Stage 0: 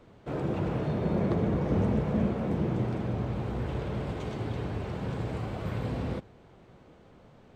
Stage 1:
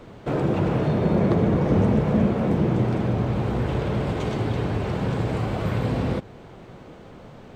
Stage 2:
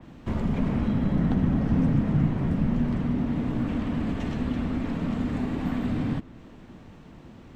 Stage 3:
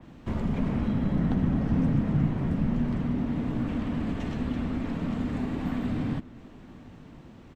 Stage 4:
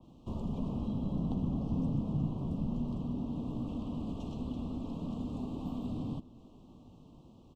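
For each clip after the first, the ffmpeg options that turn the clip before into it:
-filter_complex "[0:a]equalizer=f=68:w=3.9:g=-6,asplit=2[s0][s1];[s1]acompressor=threshold=0.0141:ratio=6,volume=1.06[s2];[s0][s2]amix=inputs=2:normalize=0,volume=1.88"
-af "afreqshift=-360,adynamicequalizer=threshold=0.00251:dfrequency=3500:dqfactor=0.7:tfrequency=3500:tqfactor=0.7:attack=5:release=100:ratio=0.375:range=2:mode=cutabove:tftype=highshelf,volume=0.708"
-af "aecho=1:1:1019:0.0668,volume=0.794"
-af "asuperstop=centerf=1800:order=8:qfactor=1.1,volume=0.398"

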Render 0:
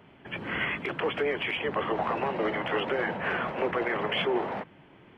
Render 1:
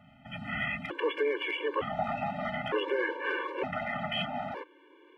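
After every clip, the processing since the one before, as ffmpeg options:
-af "afftfilt=real='re*gt(sin(2*PI*0.55*pts/sr)*(1-2*mod(floor(b*sr/1024/300),2)),0)':imag='im*gt(sin(2*PI*0.55*pts/sr)*(1-2*mod(floor(b*sr/1024/300),2)),0)':win_size=1024:overlap=0.75"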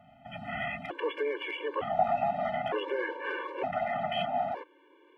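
-af "equalizer=f=710:w=4.2:g=14,volume=0.668"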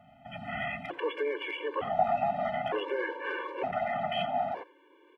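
-af "aecho=1:1:86:0.119"

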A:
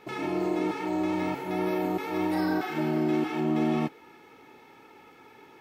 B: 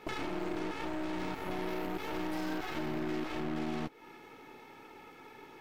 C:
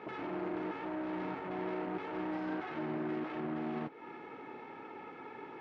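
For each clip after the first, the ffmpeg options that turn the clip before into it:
-af "aeval=exprs='0.133*(cos(1*acos(clip(val(0)/0.133,-1,1)))-cos(1*PI/2))+0.0237*(cos(8*acos(clip(val(0)/0.133,-1,1)))-cos(8*PI/2))':c=same,acompressor=threshold=0.0224:ratio=6"
-af "alimiter=level_in=3.55:limit=0.0631:level=0:latency=1:release=13,volume=0.282,highpass=140,lowpass=2000,volume=1.88"

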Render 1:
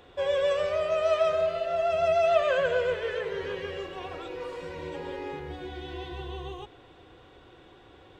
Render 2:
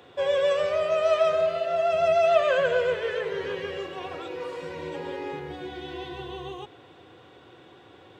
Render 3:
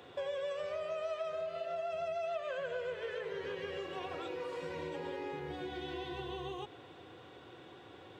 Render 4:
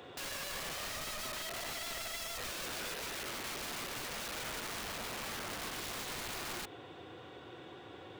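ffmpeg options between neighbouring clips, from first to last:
-af "highpass=f=96:w=0.5412,highpass=f=96:w=1.3066,volume=1.33"
-af "acompressor=threshold=0.0178:ratio=5,volume=0.75"
-af "aeval=exprs='(mod(94.4*val(0)+1,2)-1)/94.4':c=same,volume=1.41"

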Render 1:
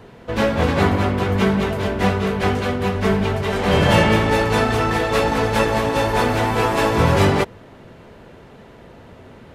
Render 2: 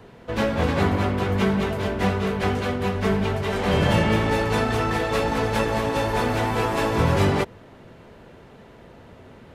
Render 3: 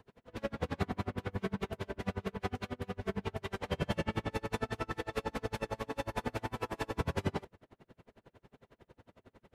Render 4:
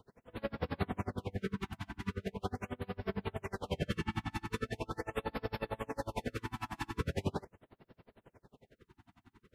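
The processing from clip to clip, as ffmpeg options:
-filter_complex "[0:a]acrossover=split=360[s0][s1];[s1]acompressor=threshold=0.141:ratio=6[s2];[s0][s2]amix=inputs=2:normalize=0,volume=0.668"
-af "aeval=exprs='val(0)*pow(10,-35*(0.5-0.5*cos(2*PI*11*n/s))/20)':c=same,volume=0.376"
-af "afftfilt=real='re*(1-between(b*sr/1024,470*pow(8000/470,0.5+0.5*sin(2*PI*0.41*pts/sr))/1.41,470*pow(8000/470,0.5+0.5*sin(2*PI*0.41*pts/sr))*1.41))':imag='im*(1-between(b*sr/1024,470*pow(8000/470,0.5+0.5*sin(2*PI*0.41*pts/sr))/1.41,470*pow(8000/470,0.5+0.5*sin(2*PI*0.41*pts/sr))*1.41))':win_size=1024:overlap=0.75,volume=0.891"

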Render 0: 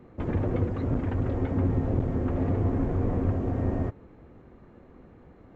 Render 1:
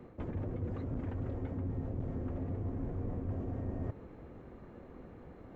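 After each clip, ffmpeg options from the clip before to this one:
-filter_complex "[0:a]acrossover=split=280[s0][s1];[s1]acompressor=threshold=0.0178:ratio=6[s2];[s0][s2]amix=inputs=2:normalize=0,equalizer=f=550:t=o:w=0.77:g=2,areverse,acompressor=threshold=0.0158:ratio=4,areverse"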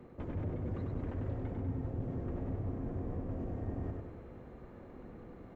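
-af "aecho=1:1:97|194|291|388|485|582|679:0.631|0.341|0.184|0.0994|0.0537|0.029|0.0156,volume=0.841"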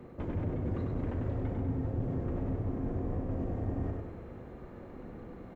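-filter_complex "[0:a]asplit=2[s0][s1];[s1]adelay=38,volume=0.282[s2];[s0][s2]amix=inputs=2:normalize=0,volume=1.58"

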